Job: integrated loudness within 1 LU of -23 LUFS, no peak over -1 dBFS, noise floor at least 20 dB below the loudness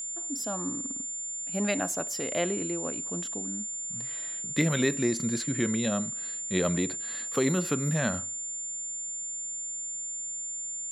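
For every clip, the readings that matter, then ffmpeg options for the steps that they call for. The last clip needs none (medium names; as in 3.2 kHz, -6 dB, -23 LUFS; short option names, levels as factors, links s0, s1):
steady tone 7.2 kHz; tone level -33 dBFS; loudness -29.5 LUFS; peak level -11.0 dBFS; loudness target -23.0 LUFS
-> -af "bandreject=f=7200:w=30"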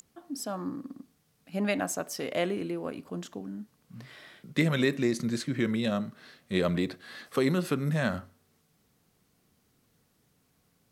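steady tone not found; loudness -31.0 LUFS; peak level -11.5 dBFS; loudness target -23.0 LUFS
-> -af "volume=2.51"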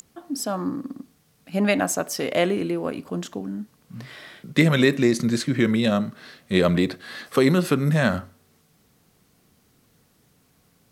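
loudness -23.0 LUFS; peak level -3.5 dBFS; noise floor -62 dBFS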